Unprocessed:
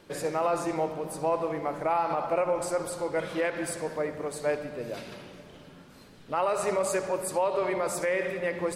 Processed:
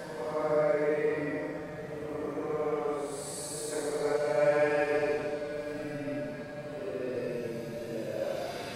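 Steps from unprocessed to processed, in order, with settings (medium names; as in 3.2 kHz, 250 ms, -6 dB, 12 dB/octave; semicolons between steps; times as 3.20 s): Paulstretch 8.3×, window 0.10 s, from 3.93 s; time-frequency box 3.72–4.16 s, 260–2400 Hz +8 dB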